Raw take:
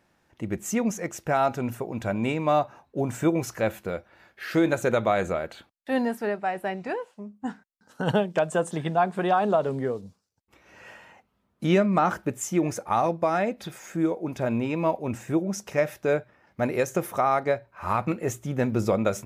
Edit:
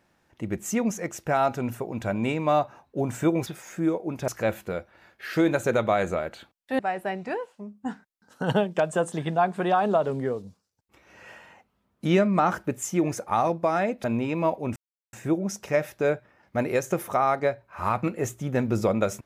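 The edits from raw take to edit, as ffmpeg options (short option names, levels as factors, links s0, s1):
-filter_complex "[0:a]asplit=6[s0][s1][s2][s3][s4][s5];[s0]atrim=end=3.462[s6];[s1]atrim=start=13.628:end=14.452[s7];[s2]atrim=start=3.458:end=5.972[s8];[s3]atrim=start=6.378:end=13.632[s9];[s4]atrim=start=14.448:end=15.17,asetpts=PTS-STARTPTS,afade=t=out:st=0.718:d=0.004:c=hsin,apad=pad_dur=0.37[s10];[s5]atrim=start=15.17,asetpts=PTS-STARTPTS,afade=t=in:d=0.004:c=hsin[s11];[s6][s7]acrossfade=d=0.004:c1=hsin:c2=hsin[s12];[s12][s8]acrossfade=d=0.004:c1=hsin:c2=hsin[s13];[s13][s9]acrossfade=d=0.004:c1=hsin:c2=hsin[s14];[s10][s11]concat=n=2:v=0:a=1[s15];[s14][s15]acrossfade=d=0.004:c1=hsin:c2=hsin"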